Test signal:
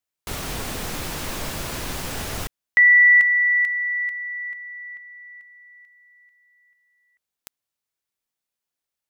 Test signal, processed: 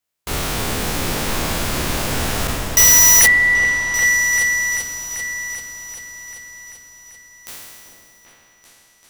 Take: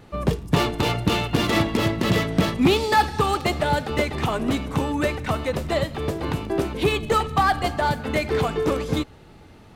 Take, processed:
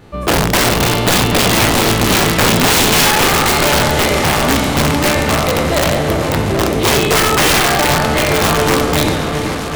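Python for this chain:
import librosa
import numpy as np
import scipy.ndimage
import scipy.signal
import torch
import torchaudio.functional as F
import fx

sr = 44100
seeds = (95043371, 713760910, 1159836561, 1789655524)

y = fx.spec_trails(x, sr, decay_s=1.86)
y = (np.mod(10.0 ** (11.0 / 20.0) * y + 1.0, 2.0) - 1.0) / 10.0 ** (11.0 / 20.0)
y = fx.echo_opening(y, sr, ms=390, hz=750, octaves=2, feedback_pct=70, wet_db=-6)
y = y * 10.0 ** (4.0 / 20.0)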